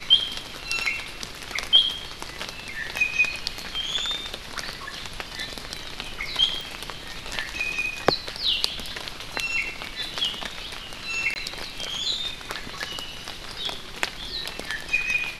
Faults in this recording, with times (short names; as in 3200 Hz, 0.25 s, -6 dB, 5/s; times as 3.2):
6.61 pop
11.34–11.36 gap 19 ms